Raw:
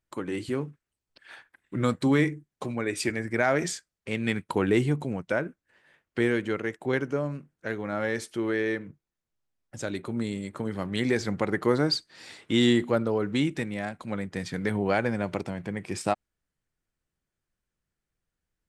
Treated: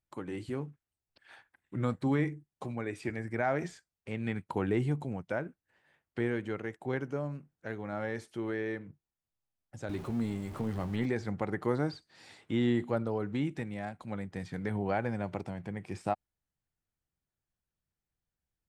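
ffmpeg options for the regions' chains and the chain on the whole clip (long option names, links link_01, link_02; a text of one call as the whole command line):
ffmpeg -i in.wav -filter_complex "[0:a]asettb=1/sr,asplit=3[link_01][link_02][link_03];[link_01]atrim=end=9.894[link_04];[link_02]atrim=start=9.89:end=11.06,asetpts=PTS-STARTPTS,afade=type=in:duration=0.004:curve=qsin,afade=type=out:start_time=1.166:duration=0.004:curve=qsin,aeval=exprs='val(0)+0.5*0.0158*sgn(val(0))':channel_layout=same,lowshelf=frequency=93:gain=8.5,asplit=2[link_05][link_06];[link_06]adelay=13,volume=-11dB[link_07];[link_05][link_07]amix=inputs=2:normalize=0,atrim=end_sample=51597[link_08];[link_03]atrim=start=11.056[link_09];[link_04][link_08]acrossfade=duration=0.004:curve1=hsin:curve2=qsin[link_10];[link_10][link_09]acrossfade=duration=0.004:curve1=qsin:curve2=hsin,equalizer=frequency=91:width_type=o:width=2:gain=6,acrossover=split=2600[link_11][link_12];[link_12]acompressor=threshold=-44dB:ratio=4:attack=1:release=60[link_13];[link_11][link_13]amix=inputs=2:normalize=0,equalizer=frequency=790:width_type=o:width=0.51:gain=5.5,volume=-8.5dB" out.wav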